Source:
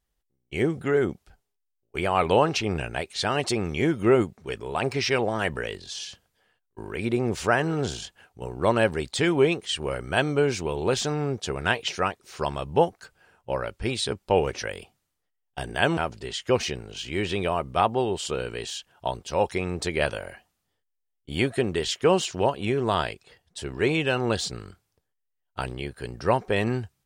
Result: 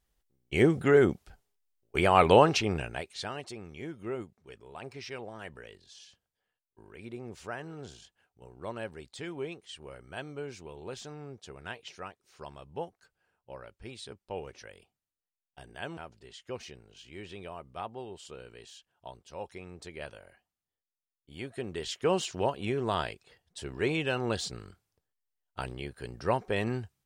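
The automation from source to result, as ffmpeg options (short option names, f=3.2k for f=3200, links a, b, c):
-af "volume=12.5dB,afade=t=out:st=2.28:d=0.58:silence=0.446684,afade=t=out:st=2.86:d=0.6:silence=0.266073,afade=t=in:st=21.39:d=0.83:silence=0.281838"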